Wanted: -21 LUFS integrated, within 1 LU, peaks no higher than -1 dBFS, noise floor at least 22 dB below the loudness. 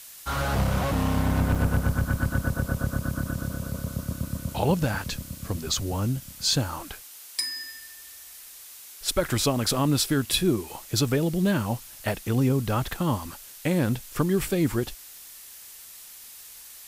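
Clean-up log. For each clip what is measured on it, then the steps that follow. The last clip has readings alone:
dropouts 1; longest dropout 4.7 ms; noise floor -45 dBFS; noise floor target -49 dBFS; loudness -26.5 LUFS; peak -9.5 dBFS; loudness target -21.0 LUFS
-> interpolate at 1.55, 4.7 ms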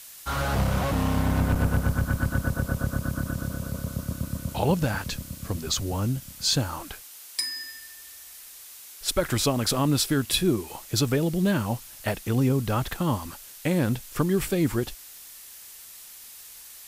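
dropouts 0; noise floor -45 dBFS; noise floor target -49 dBFS
-> denoiser 6 dB, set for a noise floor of -45 dBFS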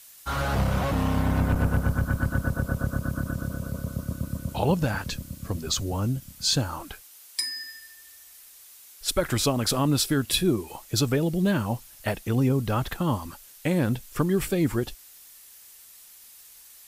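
noise floor -50 dBFS; loudness -26.5 LUFS; peak -9.5 dBFS; loudness target -21.0 LUFS
-> gain +5.5 dB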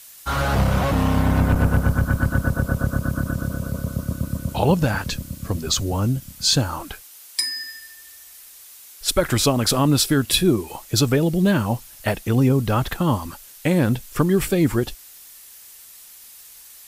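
loudness -21.0 LUFS; peak -4.0 dBFS; noise floor -45 dBFS

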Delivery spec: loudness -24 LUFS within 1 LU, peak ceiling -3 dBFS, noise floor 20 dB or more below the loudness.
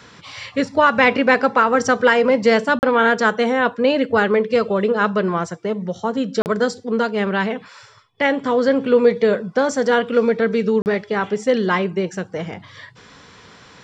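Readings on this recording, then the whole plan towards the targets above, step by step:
dropouts 3; longest dropout 39 ms; loudness -18.0 LUFS; peak -3.0 dBFS; loudness target -24.0 LUFS
-> interpolate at 2.79/6.42/10.82, 39 ms; gain -6 dB

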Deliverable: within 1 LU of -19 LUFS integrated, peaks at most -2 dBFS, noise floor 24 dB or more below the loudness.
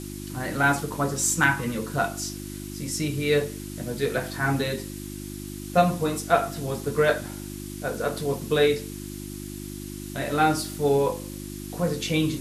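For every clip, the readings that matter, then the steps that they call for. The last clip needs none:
hum 50 Hz; harmonics up to 350 Hz; hum level -34 dBFS; noise floor -36 dBFS; noise floor target -50 dBFS; loudness -25.5 LUFS; peak -5.5 dBFS; loudness target -19.0 LUFS
-> de-hum 50 Hz, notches 7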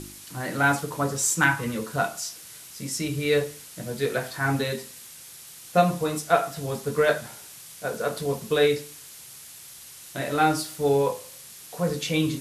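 hum none; noise floor -45 dBFS; noise floor target -50 dBFS
-> denoiser 6 dB, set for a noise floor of -45 dBFS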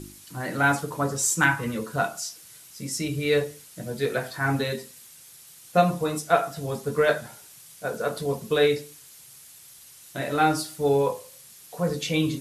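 noise floor -49 dBFS; noise floor target -50 dBFS
-> denoiser 6 dB, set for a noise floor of -49 dBFS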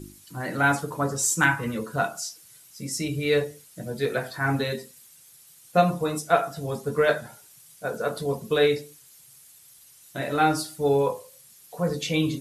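noise floor -53 dBFS; loudness -25.5 LUFS; peak -5.0 dBFS; loudness target -19.0 LUFS
-> gain +6.5 dB; limiter -2 dBFS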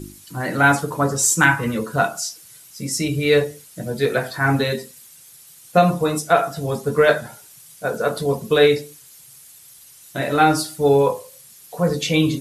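loudness -19.5 LUFS; peak -2.0 dBFS; noise floor -46 dBFS

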